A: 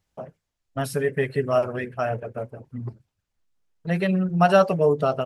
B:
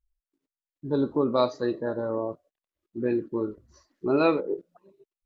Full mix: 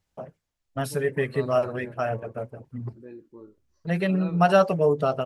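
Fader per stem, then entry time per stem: -1.5, -17.5 dB; 0.00, 0.00 s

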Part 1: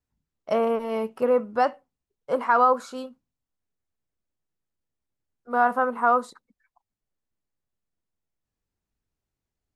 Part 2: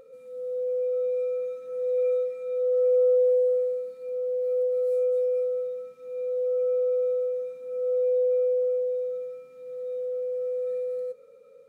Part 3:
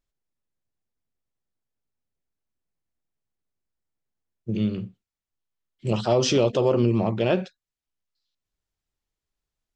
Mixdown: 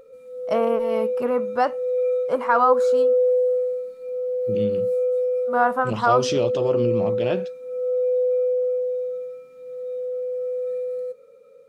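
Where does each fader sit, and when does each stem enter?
+1.0, +2.5, -3.5 dB; 0.00, 0.00, 0.00 s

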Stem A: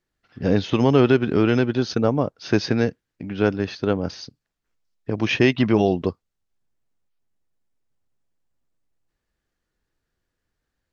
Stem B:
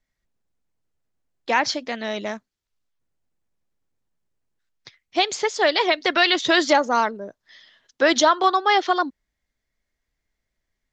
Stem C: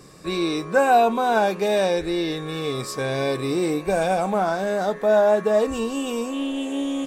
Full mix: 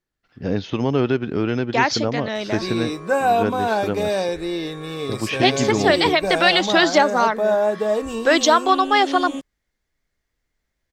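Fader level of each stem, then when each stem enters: -3.5, +1.5, -1.5 dB; 0.00, 0.25, 2.35 s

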